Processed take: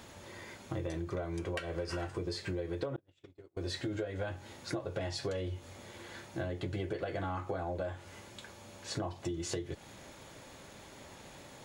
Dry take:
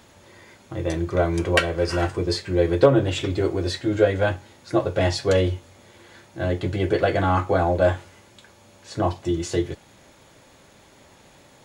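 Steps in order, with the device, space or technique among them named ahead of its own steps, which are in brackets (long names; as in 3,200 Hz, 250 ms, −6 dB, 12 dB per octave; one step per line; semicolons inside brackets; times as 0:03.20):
serial compression, peaks first (downward compressor 5 to 1, threshold −28 dBFS, peak gain reduction 16.5 dB; downward compressor 3 to 1, threshold −35 dBFS, peak gain reduction 8.5 dB)
0:02.96–0:03.57: noise gate −32 dBFS, range −39 dB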